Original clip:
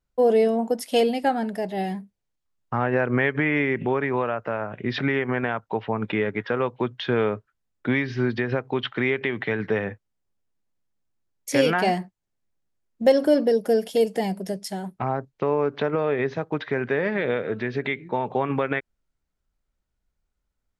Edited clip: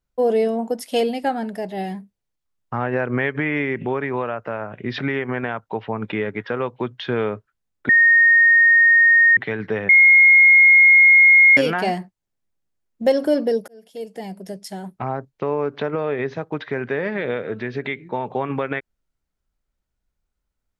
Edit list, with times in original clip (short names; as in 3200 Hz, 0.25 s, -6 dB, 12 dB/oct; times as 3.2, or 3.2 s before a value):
7.89–9.37 bleep 1850 Hz -9.5 dBFS
9.89–11.57 bleep 2150 Hz -7.5 dBFS
13.68–14.92 fade in